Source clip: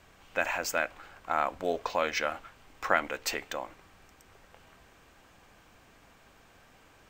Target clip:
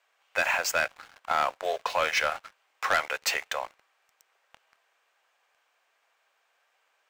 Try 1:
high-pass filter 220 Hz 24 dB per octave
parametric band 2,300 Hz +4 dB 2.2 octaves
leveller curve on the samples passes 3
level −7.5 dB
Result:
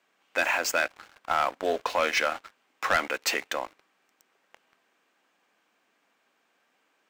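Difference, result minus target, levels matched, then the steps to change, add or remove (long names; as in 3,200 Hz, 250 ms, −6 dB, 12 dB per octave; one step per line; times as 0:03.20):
250 Hz band +8.5 dB
change: high-pass filter 520 Hz 24 dB per octave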